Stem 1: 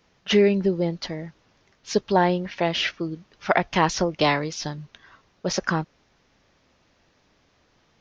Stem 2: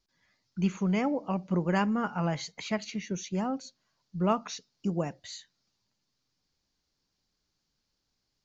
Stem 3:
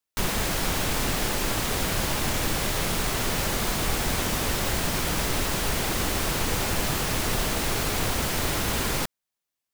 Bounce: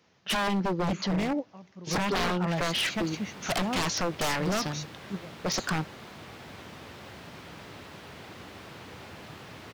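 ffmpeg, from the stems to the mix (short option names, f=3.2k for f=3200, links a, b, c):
-filter_complex "[0:a]volume=-1.5dB,asplit=2[a][b];[1:a]adelay=250,volume=0.5dB[c];[2:a]acrossover=split=4600[d][e];[e]acompressor=threshold=-48dB:ratio=4:attack=1:release=60[f];[d][f]amix=inputs=2:normalize=0,adelay=2400,volume=-16.5dB[g];[b]apad=whole_len=383255[h];[c][h]sidechaingate=range=-18dB:threshold=-51dB:ratio=16:detection=peak[i];[a][i][g]amix=inputs=3:normalize=0,highpass=f=83:w=0.5412,highpass=f=83:w=1.3066,aeval=exprs='0.0794*(abs(mod(val(0)/0.0794+3,4)-2)-1)':c=same"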